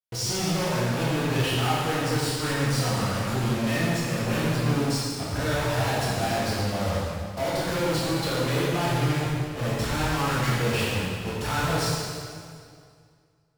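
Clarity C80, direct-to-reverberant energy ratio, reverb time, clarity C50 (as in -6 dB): -0.5 dB, -8.0 dB, 2.2 s, -2.5 dB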